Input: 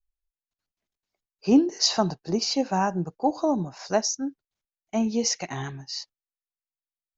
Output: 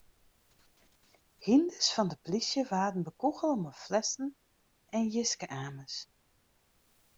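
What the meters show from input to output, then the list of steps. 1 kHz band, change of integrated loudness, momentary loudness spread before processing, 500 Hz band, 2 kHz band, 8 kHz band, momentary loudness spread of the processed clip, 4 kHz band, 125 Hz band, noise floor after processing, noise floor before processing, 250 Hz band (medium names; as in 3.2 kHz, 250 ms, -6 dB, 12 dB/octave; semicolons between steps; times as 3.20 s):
-6.5 dB, -6.5 dB, 13 LU, -6.5 dB, -6.5 dB, no reading, 13 LU, -6.5 dB, -6.5 dB, -71 dBFS, under -85 dBFS, -6.5 dB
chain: upward compressor, threshold -39 dBFS; added noise pink -64 dBFS; trim -6.5 dB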